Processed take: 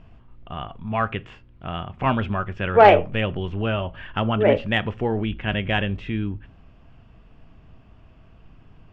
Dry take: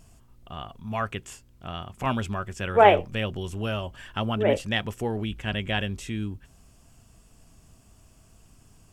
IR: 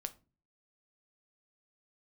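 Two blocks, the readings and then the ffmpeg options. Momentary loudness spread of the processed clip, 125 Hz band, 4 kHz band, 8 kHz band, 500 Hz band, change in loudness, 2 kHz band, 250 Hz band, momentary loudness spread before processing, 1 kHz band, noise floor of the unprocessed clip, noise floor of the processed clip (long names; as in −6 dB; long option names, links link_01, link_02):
19 LU, +5.0 dB, +1.5 dB, below −15 dB, +4.5 dB, +4.5 dB, +4.5 dB, +5.0 dB, 20 LU, +4.0 dB, −57 dBFS, −51 dBFS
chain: -filter_complex "[0:a]lowpass=frequency=3000:width=0.5412,lowpass=frequency=3000:width=1.3066,acontrast=42,asplit=2[link_01][link_02];[1:a]atrim=start_sample=2205[link_03];[link_02][link_03]afir=irnorm=-1:irlink=0,volume=2dB[link_04];[link_01][link_04]amix=inputs=2:normalize=0,volume=-6dB"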